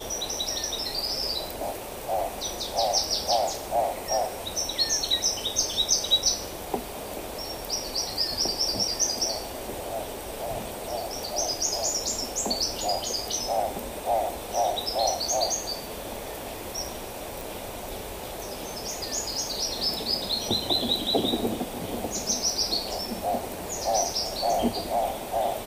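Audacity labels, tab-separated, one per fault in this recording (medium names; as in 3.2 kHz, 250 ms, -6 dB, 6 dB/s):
17.410000	17.410000	pop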